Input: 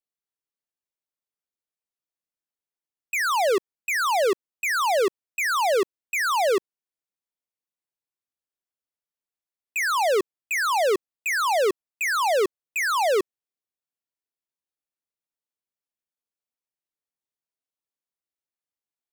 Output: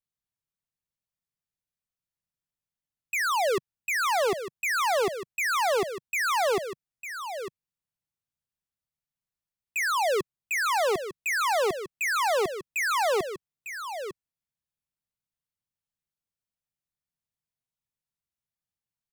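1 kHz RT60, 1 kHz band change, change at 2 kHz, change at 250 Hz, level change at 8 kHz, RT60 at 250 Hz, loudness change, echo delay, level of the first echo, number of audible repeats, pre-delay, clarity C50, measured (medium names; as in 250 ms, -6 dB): no reverb, -2.5 dB, -2.0 dB, -4.5 dB, -2.0 dB, no reverb, -3.5 dB, 901 ms, -10.0 dB, 1, no reverb, no reverb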